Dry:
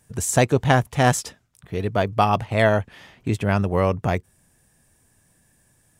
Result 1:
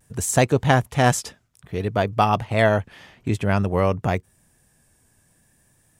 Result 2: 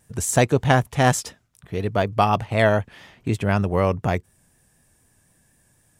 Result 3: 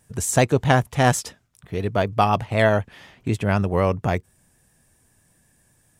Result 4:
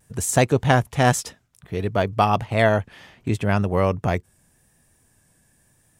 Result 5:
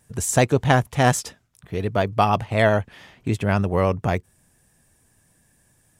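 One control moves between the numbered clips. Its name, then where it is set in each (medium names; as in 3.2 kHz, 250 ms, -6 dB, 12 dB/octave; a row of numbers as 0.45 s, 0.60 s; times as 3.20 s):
vibrato, rate: 0.55 Hz, 4 Hz, 7.9 Hz, 0.89 Hz, 13 Hz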